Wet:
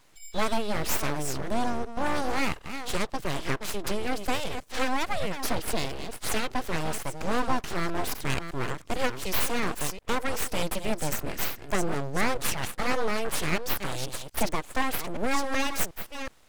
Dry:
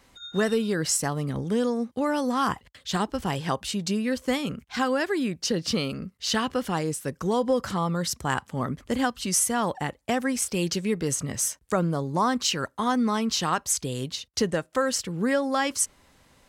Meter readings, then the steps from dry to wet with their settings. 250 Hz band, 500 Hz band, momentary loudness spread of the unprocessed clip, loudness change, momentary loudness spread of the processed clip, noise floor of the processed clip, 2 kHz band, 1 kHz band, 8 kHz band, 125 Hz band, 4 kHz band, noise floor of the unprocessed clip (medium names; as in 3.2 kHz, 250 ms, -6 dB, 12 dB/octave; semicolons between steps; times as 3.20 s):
-6.5 dB, -4.5 dB, 5 LU, -3.5 dB, 5 LU, -50 dBFS, +0.5 dB, -2.0 dB, -6.5 dB, -4.5 dB, -3.5 dB, -63 dBFS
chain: chunks repeated in reverse 370 ms, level -9 dB; full-wave rectifier